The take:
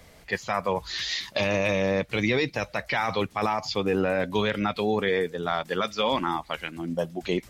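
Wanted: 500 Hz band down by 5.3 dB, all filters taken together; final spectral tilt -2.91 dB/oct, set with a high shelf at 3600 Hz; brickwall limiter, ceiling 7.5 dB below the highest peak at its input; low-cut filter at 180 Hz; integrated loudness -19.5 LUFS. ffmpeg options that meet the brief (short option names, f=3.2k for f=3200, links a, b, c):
-af "highpass=180,equalizer=f=500:t=o:g=-6,highshelf=f=3.6k:g=-8.5,volume=14.5dB,alimiter=limit=-8dB:level=0:latency=1"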